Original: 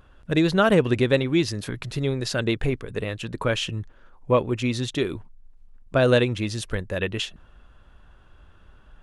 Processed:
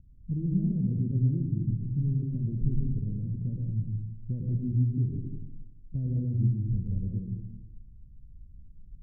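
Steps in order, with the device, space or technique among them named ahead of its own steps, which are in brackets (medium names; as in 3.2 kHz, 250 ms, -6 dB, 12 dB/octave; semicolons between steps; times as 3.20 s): club heard from the street (peak limiter -15.5 dBFS, peak gain reduction 8.5 dB; low-pass 200 Hz 24 dB/octave; reverberation RT60 0.95 s, pre-delay 103 ms, DRR 0.5 dB)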